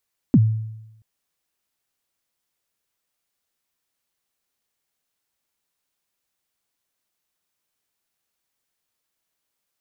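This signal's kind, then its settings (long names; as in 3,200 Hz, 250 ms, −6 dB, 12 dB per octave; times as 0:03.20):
synth kick length 0.68 s, from 300 Hz, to 110 Hz, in 47 ms, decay 0.92 s, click off, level −8 dB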